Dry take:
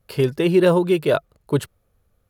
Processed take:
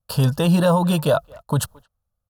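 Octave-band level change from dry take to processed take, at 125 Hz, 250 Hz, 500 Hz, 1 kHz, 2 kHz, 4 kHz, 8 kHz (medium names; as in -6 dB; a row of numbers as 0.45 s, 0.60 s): +5.5 dB, 0.0 dB, -3.5 dB, +4.5 dB, -2.5 dB, +2.5 dB, +9.5 dB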